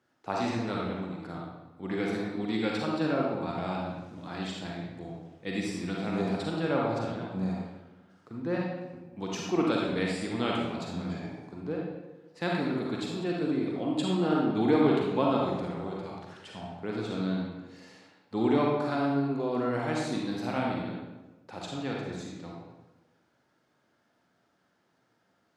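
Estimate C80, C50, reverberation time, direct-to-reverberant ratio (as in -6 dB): 2.5 dB, -1.0 dB, 1.1 s, -3.0 dB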